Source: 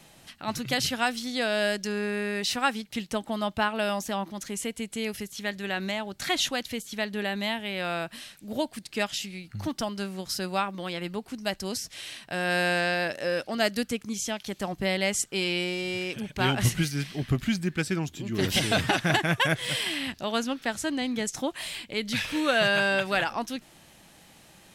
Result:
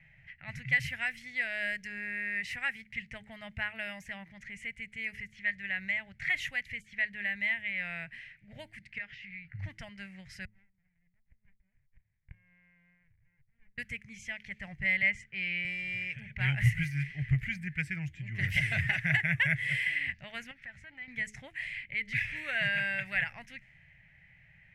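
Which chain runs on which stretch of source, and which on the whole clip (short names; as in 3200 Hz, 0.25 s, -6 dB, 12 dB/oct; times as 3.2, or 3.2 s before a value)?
8.98–9.59 LPF 5600 Hz 24 dB/oct + bell 1500 Hz +6.5 dB 0.5 oct + compressor 3:1, threshold -36 dBFS
10.45–13.78 flipped gate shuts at -32 dBFS, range -30 dB + running maximum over 65 samples
15.02–15.65 LPF 4300 Hz + three-band expander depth 40%
20.51–21.08 compressor 2.5:1, threshold -36 dBFS + core saturation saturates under 890 Hz
whole clip: de-hum 106.3 Hz, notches 4; low-pass opened by the level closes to 2700 Hz, open at -24 dBFS; EQ curve 140 Hz 0 dB, 240 Hz -22 dB, 370 Hz -29 dB, 620 Hz -18 dB, 1200 Hz -23 dB, 2000 Hz +8 dB, 3700 Hz -21 dB, 13000 Hz -17 dB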